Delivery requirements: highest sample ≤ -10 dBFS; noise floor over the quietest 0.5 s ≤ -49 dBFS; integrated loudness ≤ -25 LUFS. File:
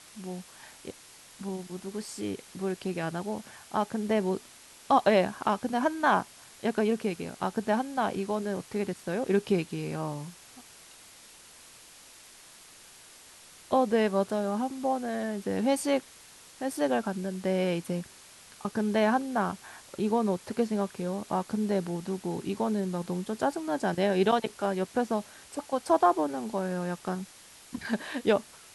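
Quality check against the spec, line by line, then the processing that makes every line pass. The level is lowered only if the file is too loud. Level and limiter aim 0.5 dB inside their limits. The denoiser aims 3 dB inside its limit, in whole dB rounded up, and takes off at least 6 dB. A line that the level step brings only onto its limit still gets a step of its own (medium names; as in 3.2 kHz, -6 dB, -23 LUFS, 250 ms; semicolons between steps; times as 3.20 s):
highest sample -11.0 dBFS: pass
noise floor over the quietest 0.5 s -52 dBFS: pass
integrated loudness -30.0 LUFS: pass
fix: none needed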